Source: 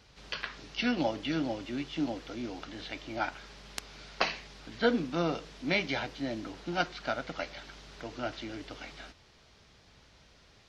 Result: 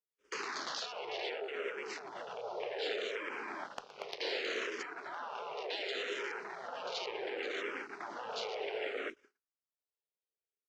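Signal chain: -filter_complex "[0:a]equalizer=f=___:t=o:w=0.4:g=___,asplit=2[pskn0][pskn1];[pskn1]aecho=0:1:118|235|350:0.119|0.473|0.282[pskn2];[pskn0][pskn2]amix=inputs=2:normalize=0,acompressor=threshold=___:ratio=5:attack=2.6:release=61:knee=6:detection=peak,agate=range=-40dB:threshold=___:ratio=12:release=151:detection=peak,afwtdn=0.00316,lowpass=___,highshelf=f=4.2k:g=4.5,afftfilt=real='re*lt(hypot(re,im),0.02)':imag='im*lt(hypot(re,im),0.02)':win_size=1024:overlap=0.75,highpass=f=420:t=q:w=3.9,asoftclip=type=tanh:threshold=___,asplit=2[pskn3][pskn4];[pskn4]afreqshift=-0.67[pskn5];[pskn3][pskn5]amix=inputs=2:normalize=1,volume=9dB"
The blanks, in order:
1.4k, 3, -38dB, -48dB, 9.6k, -25dB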